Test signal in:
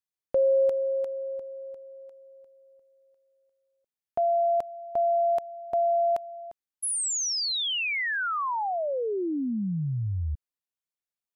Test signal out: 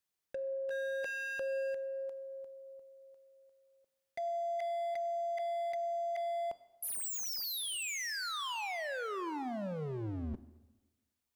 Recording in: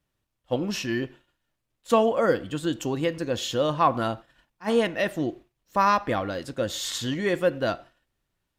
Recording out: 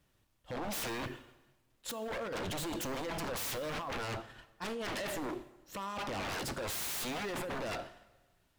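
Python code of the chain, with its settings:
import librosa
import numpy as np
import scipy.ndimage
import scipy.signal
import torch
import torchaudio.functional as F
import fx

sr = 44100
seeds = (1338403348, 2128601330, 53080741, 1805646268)

y = fx.over_compress(x, sr, threshold_db=-32.0, ratio=-1.0)
y = 10.0 ** (-33.0 / 20.0) * (np.abs((y / 10.0 ** (-33.0 / 20.0) + 3.0) % 4.0 - 2.0) - 1.0)
y = fx.rev_plate(y, sr, seeds[0], rt60_s=1.2, hf_ratio=0.85, predelay_ms=0, drr_db=13.5)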